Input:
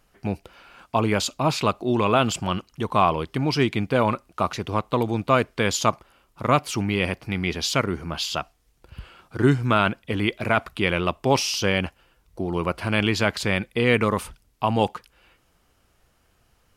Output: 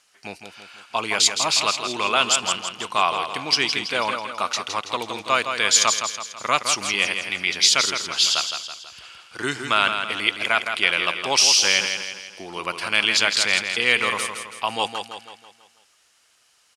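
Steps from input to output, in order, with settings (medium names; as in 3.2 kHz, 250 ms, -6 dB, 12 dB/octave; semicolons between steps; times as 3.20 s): frequency weighting ITU-R 468; feedback delay 164 ms, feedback 48%, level -7 dB; trim -1 dB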